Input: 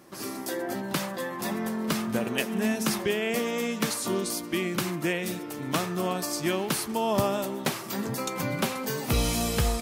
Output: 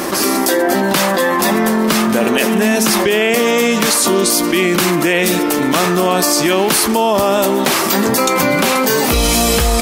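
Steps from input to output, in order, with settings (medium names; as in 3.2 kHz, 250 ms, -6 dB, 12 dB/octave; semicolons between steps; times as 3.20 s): peaking EQ 120 Hz -13.5 dB 0.98 oct; loudness maximiser +19.5 dB; level flattener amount 70%; trim -4.5 dB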